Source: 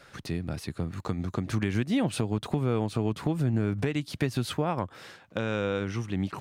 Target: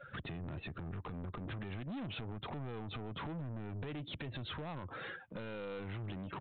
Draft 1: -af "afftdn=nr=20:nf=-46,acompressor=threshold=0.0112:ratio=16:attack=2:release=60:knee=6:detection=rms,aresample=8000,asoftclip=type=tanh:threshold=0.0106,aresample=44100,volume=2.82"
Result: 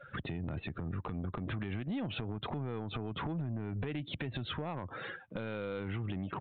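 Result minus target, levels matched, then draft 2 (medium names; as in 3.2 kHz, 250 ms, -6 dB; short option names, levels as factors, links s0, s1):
saturation: distortion -9 dB
-af "afftdn=nr=20:nf=-46,acompressor=threshold=0.0112:ratio=16:attack=2:release=60:knee=6:detection=rms,aresample=8000,asoftclip=type=tanh:threshold=0.00376,aresample=44100,volume=2.82"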